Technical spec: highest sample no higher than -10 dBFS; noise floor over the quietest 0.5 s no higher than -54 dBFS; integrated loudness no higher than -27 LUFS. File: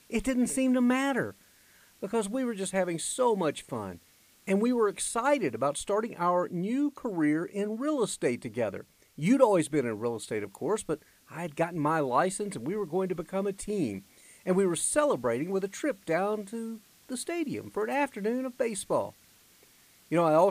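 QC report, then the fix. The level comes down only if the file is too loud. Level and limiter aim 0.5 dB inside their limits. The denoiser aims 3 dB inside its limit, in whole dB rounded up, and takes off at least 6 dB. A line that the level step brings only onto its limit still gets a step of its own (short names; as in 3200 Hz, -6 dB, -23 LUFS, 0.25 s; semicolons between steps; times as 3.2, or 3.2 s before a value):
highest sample -9.0 dBFS: fail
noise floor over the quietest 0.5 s -60 dBFS: OK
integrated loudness -29.5 LUFS: OK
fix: limiter -10.5 dBFS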